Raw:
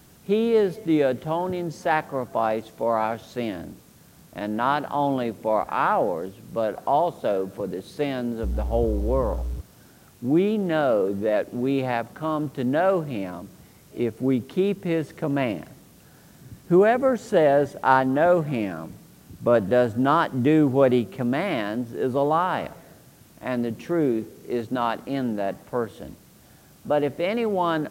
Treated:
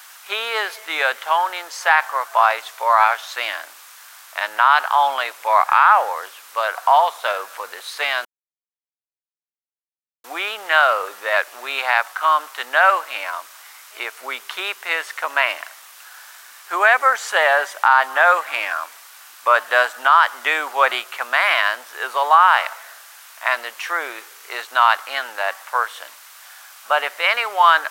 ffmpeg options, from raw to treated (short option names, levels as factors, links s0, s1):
-filter_complex "[0:a]asplit=3[s0][s1][s2];[s0]atrim=end=8.25,asetpts=PTS-STARTPTS,afade=t=out:st=8.246:d=0.004:c=hsin[s3];[s1]atrim=start=8.25:end=10.24,asetpts=PTS-STARTPTS,volume=0[s4];[s2]atrim=start=10.24,asetpts=PTS-STARTPTS,afade=t=in:d=0.004:c=hsin[s5];[s3][s4][s5]concat=n=3:v=0:a=1,highpass=f=1100:w=0.5412,highpass=f=1100:w=1.3066,highshelf=f=2100:g=-8,alimiter=level_in=11.9:limit=0.891:release=50:level=0:latency=1,volume=0.891"